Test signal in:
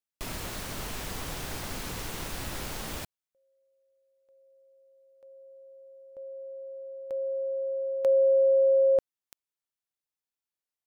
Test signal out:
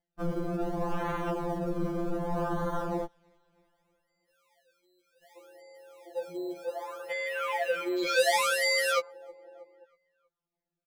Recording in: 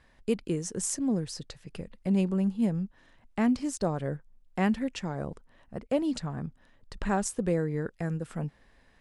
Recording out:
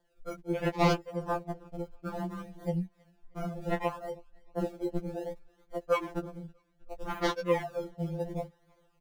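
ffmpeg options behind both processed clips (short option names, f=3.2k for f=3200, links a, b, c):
-filter_complex "[0:a]asplit=2[a][b];[b]asoftclip=type=tanh:threshold=-23.5dB,volume=-5dB[c];[a][c]amix=inputs=2:normalize=0,equalizer=f=125:t=o:w=1:g=-9,equalizer=f=250:t=o:w=1:g=-10,equalizer=f=500:t=o:w=1:g=8,equalizer=f=1k:t=o:w=1:g=4,equalizer=f=2k:t=o:w=1:g=-9,equalizer=f=4k:t=o:w=1:g=10,equalizer=f=8k:t=o:w=1:g=12,aresample=22050,aresample=44100,highshelf=f=7.9k:g=7.5,acompressor=mode=upward:threshold=-56dB:ratio=1.5:release=933:knee=2.83:detection=peak,acrusher=samples=33:mix=1:aa=0.000001:lfo=1:lforange=33:lforate=0.66,asplit=2[d][e];[e]adelay=319,lowpass=f=3.6k:p=1,volume=-21dB,asplit=2[f][g];[g]adelay=319,lowpass=f=3.6k:p=1,volume=0.51,asplit=2[h][i];[i]adelay=319,lowpass=f=3.6k:p=1,volume=0.51,asplit=2[j][k];[k]adelay=319,lowpass=f=3.6k:p=1,volume=0.51[l];[d][f][h][j][l]amix=inputs=5:normalize=0,afwtdn=0.0355,acompressor=threshold=-28dB:ratio=2:attack=0.53:release=857:knee=1:detection=rms,afftfilt=real='re*2.83*eq(mod(b,8),0)':imag='im*2.83*eq(mod(b,8),0)':win_size=2048:overlap=0.75,volume=3dB"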